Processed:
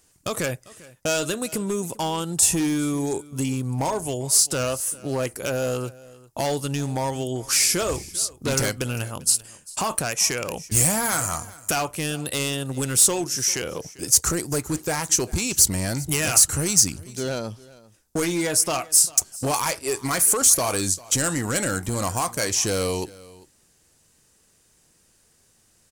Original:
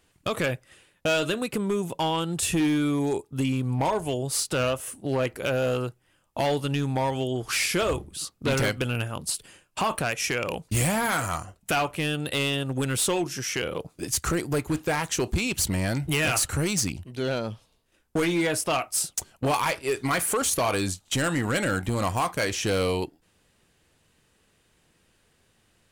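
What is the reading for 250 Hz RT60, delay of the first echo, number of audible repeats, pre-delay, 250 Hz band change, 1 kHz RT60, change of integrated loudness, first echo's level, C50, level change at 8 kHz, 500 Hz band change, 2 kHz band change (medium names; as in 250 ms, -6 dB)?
no reverb, 396 ms, 1, no reverb, 0.0 dB, no reverb, +4.5 dB, -21.0 dB, no reverb, +10.5 dB, 0.0 dB, -1.5 dB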